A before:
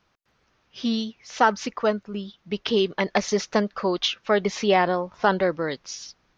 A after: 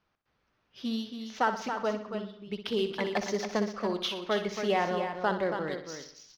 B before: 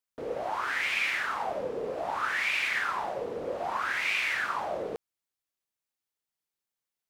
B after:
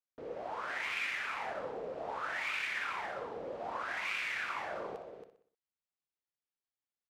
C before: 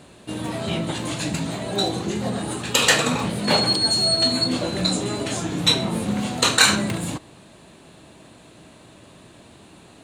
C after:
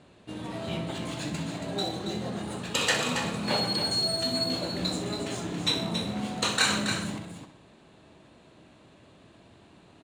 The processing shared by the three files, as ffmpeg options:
-filter_complex "[0:a]asplit=2[a][b];[b]aecho=0:1:62|124|186|248|310:0.316|0.155|0.0759|0.0372|0.0182[c];[a][c]amix=inputs=2:normalize=0,adynamicsmooth=sensitivity=7:basefreq=6k,asplit=2[d][e];[e]aecho=0:1:277:0.422[f];[d][f]amix=inputs=2:normalize=0,volume=-8.5dB"

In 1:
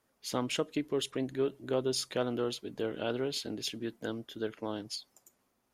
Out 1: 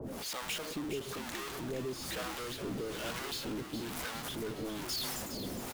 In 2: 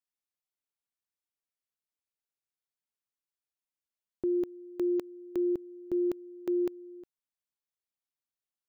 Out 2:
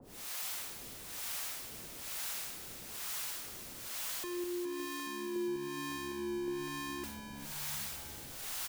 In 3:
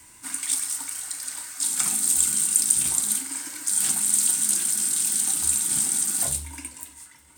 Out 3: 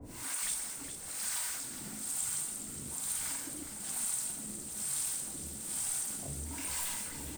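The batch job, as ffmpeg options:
-filter_complex "[0:a]aeval=exprs='val(0)+0.5*0.0891*sgn(val(0))':c=same,acrossover=split=98|840[a][b][c];[a]acompressor=threshold=-45dB:ratio=4[d];[b]acompressor=threshold=-26dB:ratio=4[e];[c]acompressor=threshold=-26dB:ratio=4[f];[d][e][f]amix=inputs=3:normalize=0,acrossover=split=580[g][h];[g]aeval=exprs='val(0)*(1-1/2+1/2*cos(2*PI*1.1*n/s))':c=same[i];[h]aeval=exprs='val(0)*(1-1/2-1/2*cos(2*PI*1.1*n/s))':c=same[j];[i][j]amix=inputs=2:normalize=0,asplit=9[k][l][m][n][o][p][q][r][s];[l]adelay=413,afreqshift=-69,volume=-9dB[t];[m]adelay=826,afreqshift=-138,volume=-13dB[u];[n]adelay=1239,afreqshift=-207,volume=-17dB[v];[o]adelay=1652,afreqshift=-276,volume=-21dB[w];[p]adelay=2065,afreqshift=-345,volume=-25.1dB[x];[q]adelay=2478,afreqshift=-414,volume=-29.1dB[y];[r]adelay=2891,afreqshift=-483,volume=-33.1dB[z];[s]adelay=3304,afreqshift=-552,volume=-37.1dB[aa];[k][t][u][v][w][x][y][z][aa]amix=inputs=9:normalize=0,volume=-7.5dB"

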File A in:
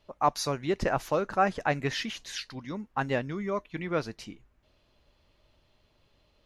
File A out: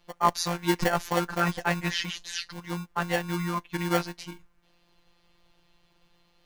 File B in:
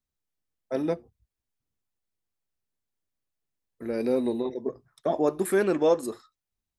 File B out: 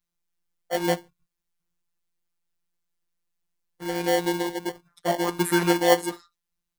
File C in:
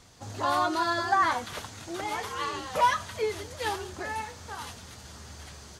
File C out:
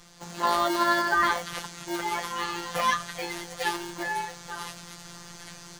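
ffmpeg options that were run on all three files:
-filter_complex "[0:a]afftfilt=real='hypot(re,im)*cos(PI*b)':imag='0':win_size=1024:overlap=0.75,acrossover=split=580|1300[a][b][c];[a]acrusher=samples=35:mix=1:aa=0.000001[d];[d][b][c]amix=inputs=3:normalize=0,volume=6.5dB"

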